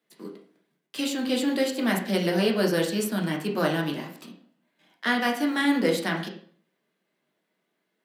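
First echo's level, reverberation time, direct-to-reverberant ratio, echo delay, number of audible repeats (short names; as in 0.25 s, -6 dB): none, 0.50 s, -0.5 dB, none, none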